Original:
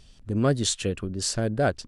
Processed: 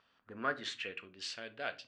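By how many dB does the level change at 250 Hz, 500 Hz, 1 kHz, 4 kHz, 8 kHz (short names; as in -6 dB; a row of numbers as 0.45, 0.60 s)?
-22.0, -17.0, -8.5, -11.0, -23.0 dB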